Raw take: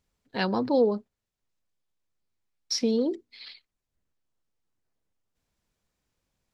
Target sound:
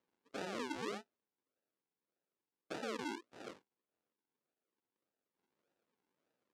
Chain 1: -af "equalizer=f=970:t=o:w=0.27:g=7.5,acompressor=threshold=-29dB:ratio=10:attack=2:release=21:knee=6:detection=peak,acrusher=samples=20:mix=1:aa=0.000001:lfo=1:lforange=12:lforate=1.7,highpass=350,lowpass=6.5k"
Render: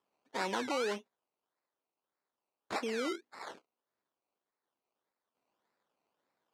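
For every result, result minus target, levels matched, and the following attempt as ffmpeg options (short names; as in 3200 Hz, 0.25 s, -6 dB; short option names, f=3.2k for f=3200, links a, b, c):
decimation with a swept rate: distortion -15 dB; compressor: peak gain reduction -6.5 dB
-af "equalizer=f=970:t=o:w=0.27:g=7.5,acompressor=threshold=-29dB:ratio=10:attack=2:release=21:knee=6:detection=peak,acrusher=samples=57:mix=1:aa=0.000001:lfo=1:lforange=34.2:lforate=1.7,highpass=350,lowpass=6.5k"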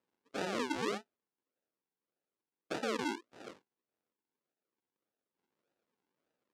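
compressor: peak gain reduction -6.5 dB
-af "equalizer=f=970:t=o:w=0.27:g=7.5,acompressor=threshold=-36dB:ratio=10:attack=2:release=21:knee=6:detection=peak,acrusher=samples=57:mix=1:aa=0.000001:lfo=1:lforange=34.2:lforate=1.7,highpass=350,lowpass=6.5k"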